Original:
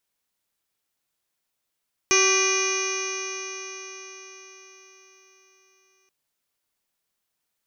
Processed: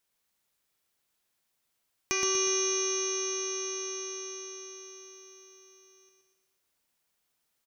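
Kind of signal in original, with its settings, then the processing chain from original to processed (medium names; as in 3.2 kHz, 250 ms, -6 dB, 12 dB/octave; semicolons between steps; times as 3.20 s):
stretched partials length 3.98 s, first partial 379 Hz, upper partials -15/-3/-11/-6.5/1/-8/-15.5/-14/-13.5/-12/-1/1 dB, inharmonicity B 0.0036, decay 4.90 s, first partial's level -22 dB
compression 2:1, threshold -36 dBFS; on a send: feedback delay 121 ms, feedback 48%, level -4.5 dB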